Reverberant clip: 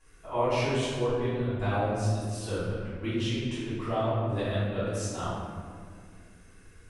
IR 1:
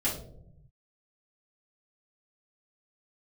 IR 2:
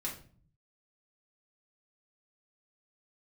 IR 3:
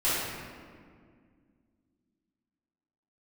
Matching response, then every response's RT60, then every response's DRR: 3; 0.75, 0.45, 2.0 s; -8.5, -4.0, -13.5 dB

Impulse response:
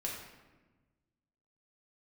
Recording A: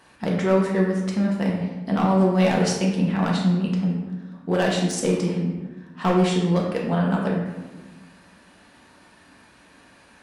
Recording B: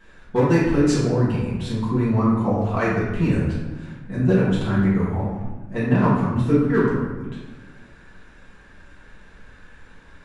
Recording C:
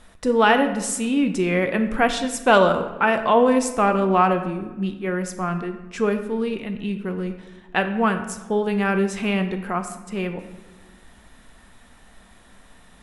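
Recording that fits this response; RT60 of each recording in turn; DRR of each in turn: A; 1.2, 1.2, 1.3 s; -3.0, -9.5, 6.5 dB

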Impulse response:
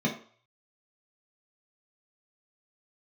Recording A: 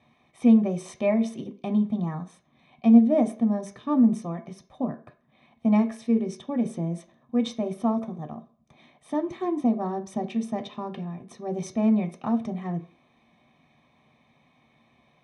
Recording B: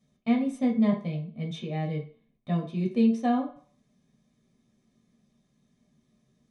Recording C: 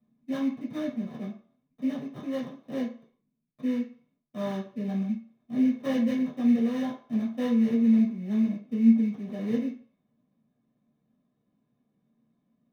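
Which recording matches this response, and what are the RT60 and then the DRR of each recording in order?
B; 0.45, 0.45, 0.45 s; 6.0, -2.0, -7.5 dB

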